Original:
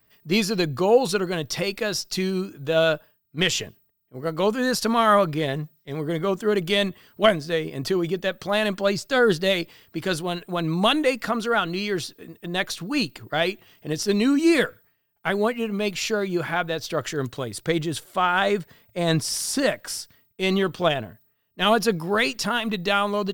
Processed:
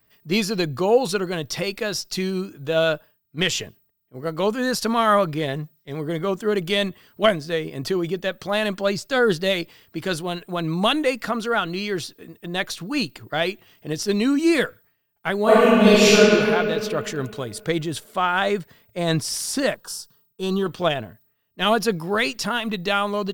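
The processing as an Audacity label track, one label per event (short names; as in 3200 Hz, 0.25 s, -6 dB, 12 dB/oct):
15.430000	16.170000	reverb throw, RT60 2.5 s, DRR -12 dB
19.740000	20.660000	fixed phaser centre 420 Hz, stages 8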